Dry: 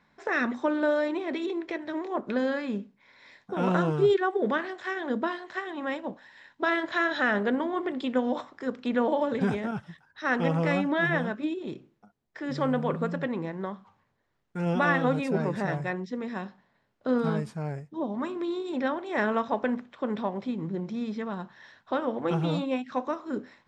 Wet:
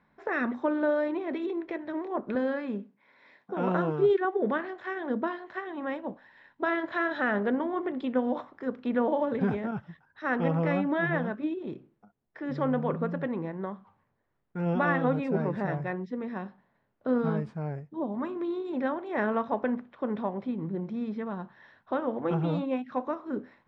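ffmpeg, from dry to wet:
ffmpeg -i in.wav -filter_complex "[0:a]asettb=1/sr,asplit=3[link_01][link_02][link_03];[link_01]atrim=end=2.354[link_04];[link_02]atrim=start=2.35:end=4.25,asetpts=PTS-STARTPTS,afade=type=in:duration=0.004:curve=qsin,afade=type=out:start_time=1.896:duration=0.004:curve=qsin,highpass=180[link_05];[link_03]atrim=start=4.246[link_06];[link_04][link_05]acrossfade=duration=0.004:curve1=hsin:curve2=qsin[link_07];[link_07][link_06]acrossfade=duration=0.004:curve1=qsin:curve2=hsin,lowpass=frequency=3500:poles=1,aemphasis=mode=reproduction:type=75fm,volume=-1.5dB" out.wav

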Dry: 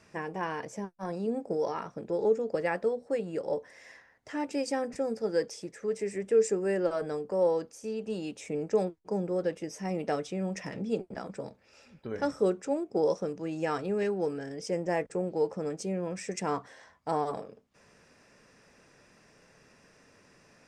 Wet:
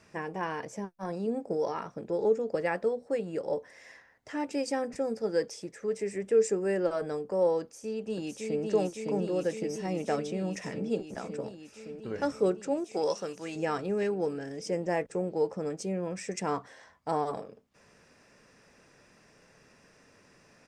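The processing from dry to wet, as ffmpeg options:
ffmpeg -i in.wav -filter_complex "[0:a]asplit=2[link_01][link_02];[link_02]afade=type=in:start_time=7.61:duration=0.01,afade=type=out:start_time=8.64:duration=0.01,aecho=0:1:560|1120|1680|2240|2800|3360|3920|4480|5040|5600|6160|6720:0.794328|0.635463|0.50837|0.406696|0.325357|0.260285|0.208228|0.166583|0.133266|0.106613|0.0852903|0.0682323[link_03];[link_01][link_03]amix=inputs=2:normalize=0,asettb=1/sr,asplit=3[link_04][link_05][link_06];[link_04]atrim=end=12.844[link_07];[link_05]atrim=start=12.84:end=13.56,asetpts=PTS-STARTPTS,afade=type=in:duration=0.004:curve=qsin,afade=type=out:start_time=0.716:duration=0.004:curve=qsin,tiltshelf=frequency=720:gain=-8[link_08];[link_06]atrim=start=13.556[link_09];[link_07][link_08]acrossfade=duration=0.004:curve1=hsin:curve2=qsin[link_10];[link_10][link_09]acrossfade=duration=0.004:curve1=qsin:curve2=hsin" out.wav

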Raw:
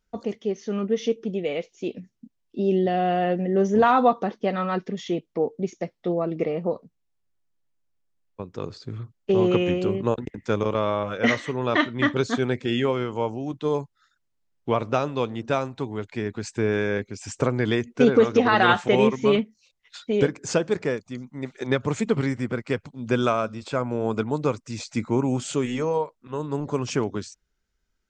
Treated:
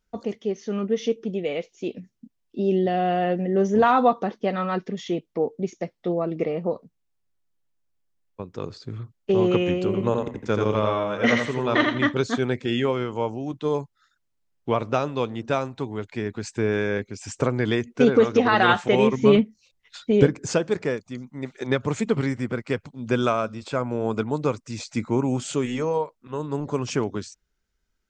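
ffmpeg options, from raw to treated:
ffmpeg -i in.wav -filter_complex "[0:a]asettb=1/sr,asplit=3[link_01][link_02][link_03];[link_01]atrim=end=9.854[link_04];[link_02]atrim=start=9.85:end=12.05,asetpts=PTS-STARTPTS,afade=type=in:duration=0.004:curve=qsin,afade=type=out:start_time=2.196:duration=0.004:curve=qsin,aecho=1:1:84|168|252|336:0.631|0.164|0.0427|0.0111,atrim=end_sample=97020[link_05];[link_03]atrim=start=12.046[link_06];[link_04][link_05]acrossfade=duration=0.004:curve1=hsin:curve2=qsin[link_07];[link_07][link_06]acrossfade=duration=0.004:curve1=qsin:curve2=hsin,asettb=1/sr,asplit=3[link_08][link_09][link_10];[link_08]atrim=end=19.114[link_11];[link_09]atrim=start=19.11:end=20.47,asetpts=PTS-STARTPTS,afade=type=in:duration=0.004:curve=qsin,afade=type=out:start_time=1.356:duration=0.004:curve=qsin,lowshelf=frequency=340:gain=8[link_12];[link_10]atrim=start=20.466[link_13];[link_11][link_12]acrossfade=duration=0.004:curve1=hsin:curve2=qsin[link_14];[link_14][link_13]acrossfade=duration=0.004:curve1=qsin:curve2=hsin" out.wav

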